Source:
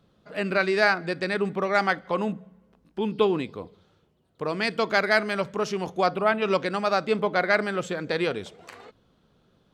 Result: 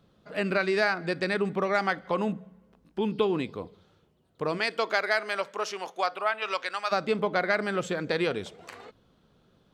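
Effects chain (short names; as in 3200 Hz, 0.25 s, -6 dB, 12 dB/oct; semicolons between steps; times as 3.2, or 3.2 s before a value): 4.57–6.91 HPF 360 Hz -> 1100 Hz 12 dB/oct; compressor 3:1, threshold -22 dBFS, peak gain reduction 5.5 dB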